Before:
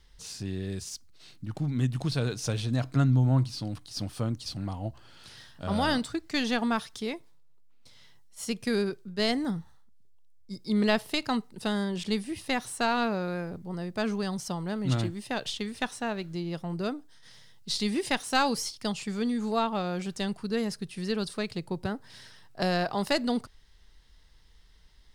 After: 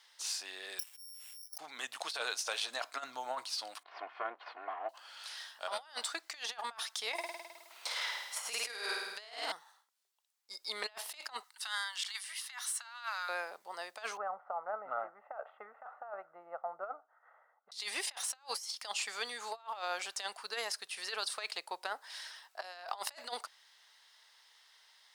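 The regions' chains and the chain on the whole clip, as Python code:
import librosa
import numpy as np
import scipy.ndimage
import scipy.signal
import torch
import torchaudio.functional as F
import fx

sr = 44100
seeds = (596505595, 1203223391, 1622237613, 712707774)

y = fx.chain(x, sr, fx.high_shelf(hz=2800.0, db=10.5),
    fx.resample_bad(factor=8, down='filtered', up='zero_stuff'),
    fx.upward_expand(threshold_db=-44.0, expansion=1.5), at=(0.79, 1.58))
y = fx.chain(y, sr, fx.lower_of_two(delay_ms=2.8),
    fx.lowpass(hz=2300.0, slope=24), at=(3.83, 4.89))
y = fx.chain(y, sr, fx.room_flutter(wall_m=9.0, rt60_s=0.86),
    fx.band_squash(depth_pct=70), at=(7.13, 9.52))
y = fx.chain(y, sr, fx.highpass(hz=1100.0, slope=24),
    fx.notch(hz=2500.0, q=9.8), at=(11.43, 13.29))
y = fx.chain(y, sr, fx.steep_lowpass(hz=1400.0, slope=36),
    fx.comb(ms=1.5, depth=0.61), at=(14.17, 17.72))
y = scipy.signal.sosfilt(scipy.signal.butter(4, 710.0, 'highpass', fs=sr, output='sos'), y)
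y = fx.over_compress(y, sr, threshold_db=-39.0, ratio=-0.5)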